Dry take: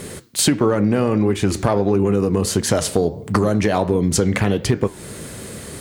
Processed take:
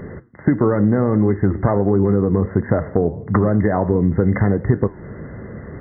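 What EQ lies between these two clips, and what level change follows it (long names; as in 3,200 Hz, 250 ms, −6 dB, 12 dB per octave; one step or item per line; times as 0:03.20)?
linear-phase brick-wall low-pass 2,100 Hz
low-shelf EQ 230 Hz +6 dB
−1.5 dB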